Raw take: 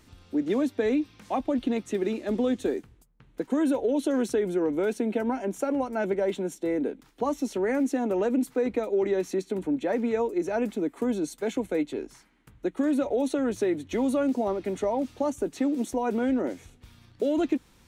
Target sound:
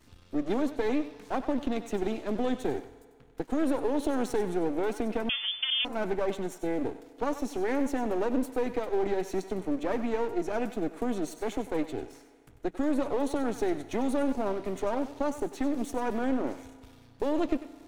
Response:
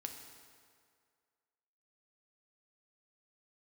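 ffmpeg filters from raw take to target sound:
-filter_complex "[0:a]aeval=exprs='if(lt(val(0),0),0.251*val(0),val(0))':c=same,asplit=2[a][b];[1:a]atrim=start_sample=2205,lowshelf=f=440:g=-11,adelay=95[c];[b][c]afir=irnorm=-1:irlink=0,volume=-7dB[d];[a][d]amix=inputs=2:normalize=0,asettb=1/sr,asplit=3[e][f][g];[e]atrim=end=5.294[h];[f]atrim=start=5.29:end=5.85,asetpts=PTS-STARTPTS,afade=t=in:d=0.004:c=qsin,afade=t=out:st=0.556:d=0.004:c=qsin,lowpass=f=3k:t=q:w=0.5098,lowpass=f=3k:t=q:w=0.6013,lowpass=f=3k:t=q:w=0.9,lowpass=f=3k:t=q:w=2.563,afreqshift=-3500[i];[g]atrim=start=5.846[j];[h][i]acrossfade=d=0.004:c1=hsin:c2=qsin[k];[k][j]acrossfade=d=0.004:c1=qsin:c2=hsin"

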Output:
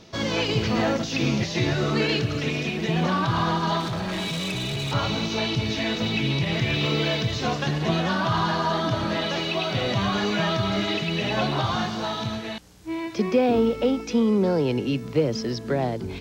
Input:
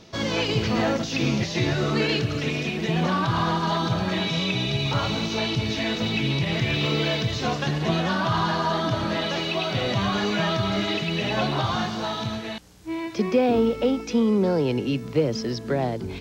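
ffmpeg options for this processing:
-filter_complex "[0:a]asettb=1/sr,asplit=3[a][b][c];[a]atrim=end=3.804[d];[b]atrim=start=3.8:end=4.93,asetpts=PTS-STARTPTS,afade=t=in:d=0.004:c=qsin,afade=t=out:st=1.126:d=0.004:c=qsin,volume=25.5dB,asoftclip=hard,volume=-25.5dB[e];[c]atrim=start=4.926[f];[d][e]acrossfade=d=0.004:c1=hsin:c2=qsin[g];[g][f]acrossfade=d=0.004:c1=qsin:c2=hsin"

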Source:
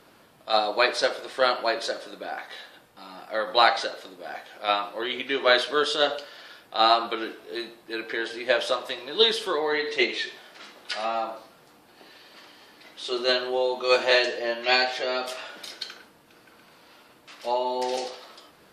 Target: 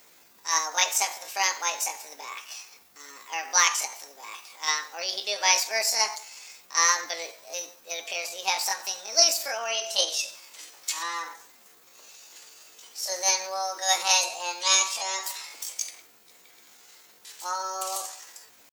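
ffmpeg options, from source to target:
-af "crystalizer=i=5.5:c=0,asetrate=66075,aresample=44100,atempo=0.66742,volume=-7dB"

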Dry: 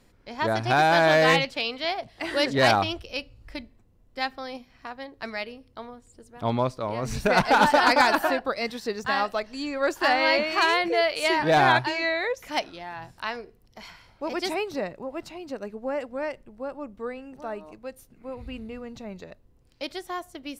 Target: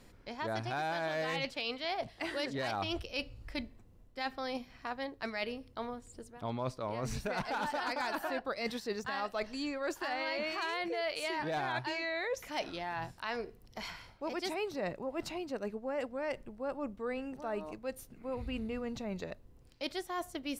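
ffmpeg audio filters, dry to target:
-af "alimiter=limit=-17dB:level=0:latency=1:release=123,areverse,acompressor=threshold=-35dB:ratio=6,areverse,volume=1.5dB"

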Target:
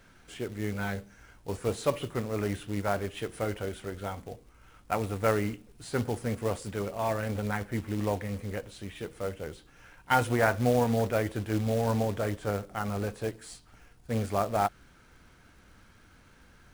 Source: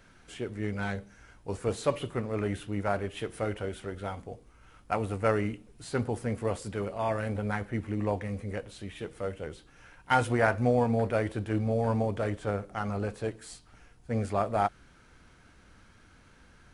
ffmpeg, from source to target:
-af "acrusher=bits=4:mode=log:mix=0:aa=0.000001"

